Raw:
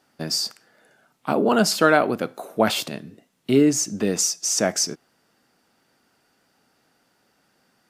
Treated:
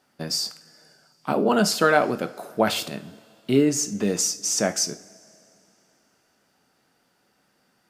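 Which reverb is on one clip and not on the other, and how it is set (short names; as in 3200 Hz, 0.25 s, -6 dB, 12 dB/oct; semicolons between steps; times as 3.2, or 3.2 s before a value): two-slope reverb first 0.36 s, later 3 s, from -21 dB, DRR 9.5 dB; gain -2 dB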